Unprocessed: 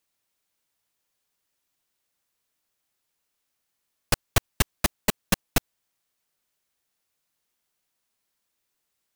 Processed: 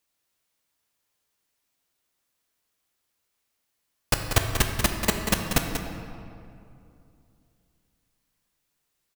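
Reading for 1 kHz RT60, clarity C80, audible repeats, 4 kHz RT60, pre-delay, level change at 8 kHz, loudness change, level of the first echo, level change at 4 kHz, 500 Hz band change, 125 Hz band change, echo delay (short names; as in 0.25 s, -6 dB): 2.5 s, 4.5 dB, 1, 1.5 s, 5 ms, +1.0 dB, +1.0 dB, -8.5 dB, +1.5 dB, +2.0 dB, +2.5 dB, 0.188 s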